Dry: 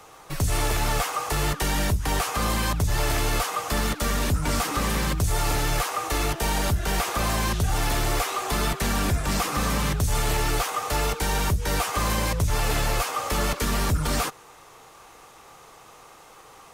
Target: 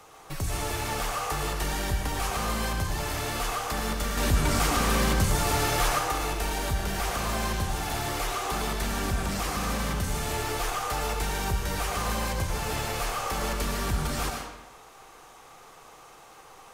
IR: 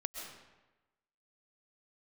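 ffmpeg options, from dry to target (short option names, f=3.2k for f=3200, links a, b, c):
-filter_complex "[0:a]alimiter=limit=-19.5dB:level=0:latency=1,asettb=1/sr,asplit=3[a][b][c];[a]atrim=end=4.174[d];[b]atrim=start=4.17:end=5.99,asetpts=PTS-STARTPTS,afade=t=in:d=0.004:c=qsin,afade=t=out:st=1.816:d=0.004:c=qsin,acontrast=31[e];[c]atrim=start=5.986[f];[d][e]acrossfade=d=0.004:c1=hsin:c2=qsin[g];[g][f]acrossfade=d=0.004:c1=qsin:c2=hsin[h];[1:a]atrim=start_sample=2205,asetrate=52920,aresample=44100[i];[h][i]afir=irnorm=-1:irlink=0"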